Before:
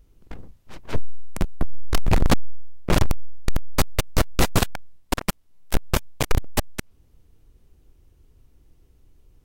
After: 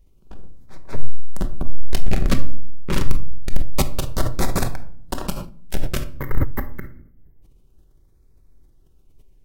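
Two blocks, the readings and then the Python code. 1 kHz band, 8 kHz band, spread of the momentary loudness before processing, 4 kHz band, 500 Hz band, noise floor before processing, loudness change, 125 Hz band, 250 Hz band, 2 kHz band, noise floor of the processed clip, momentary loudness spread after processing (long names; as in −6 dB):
−3.0 dB, −2.5 dB, 18 LU, −3.5 dB, −2.0 dB, −58 dBFS, −1.5 dB, 0.0 dB, −0.5 dB, −3.5 dB, −54 dBFS, 14 LU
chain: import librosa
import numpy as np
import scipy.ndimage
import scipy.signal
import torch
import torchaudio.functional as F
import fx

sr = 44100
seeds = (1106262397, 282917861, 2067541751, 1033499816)

y = fx.spec_box(x, sr, start_s=6.09, length_s=1.33, low_hz=2200.0, high_hz=12000.0, gain_db=-22)
y = fx.filter_lfo_notch(y, sr, shape='sine', hz=0.27, low_hz=660.0, high_hz=3000.0, q=1.7)
y = fx.room_shoebox(y, sr, seeds[0], volume_m3=860.0, walls='furnished', distance_m=1.1)
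y = fx.sustainer(y, sr, db_per_s=95.0)
y = y * 10.0 ** (-3.5 / 20.0)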